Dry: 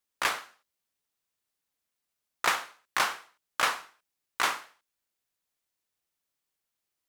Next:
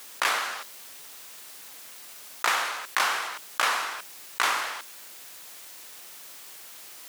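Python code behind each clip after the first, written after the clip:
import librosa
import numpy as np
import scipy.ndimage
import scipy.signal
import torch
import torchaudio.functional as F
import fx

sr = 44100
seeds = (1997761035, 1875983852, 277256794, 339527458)

y = fx.highpass(x, sr, hz=420.0, slope=6)
y = fx.env_flatten(y, sr, amount_pct=70)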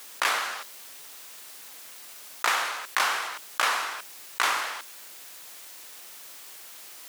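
y = fx.low_shelf(x, sr, hz=91.0, db=-11.0)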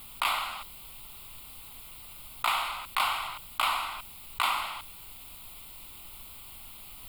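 y = fx.fixed_phaser(x, sr, hz=1700.0, stages=6)
y = fx.dmg_noise_colour(y, sr, seeds[0], colour='brown', level_db=-53.0)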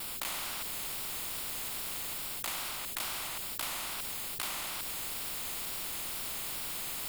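y = fx.rider(x, sr, range_db=4, speed_s=0.5)
y = fx.wow_flutter(y, sr, seeds[1], rate_hz=2.1, depth_cents=71.0)
y = fx.spectral_comp(y, sr, ratio=4.0)
y = y * librosa.db_to_amplitude(-3.0)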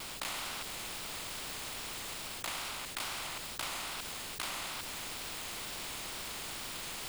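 y = scipy.signal.medfilt(x, 3)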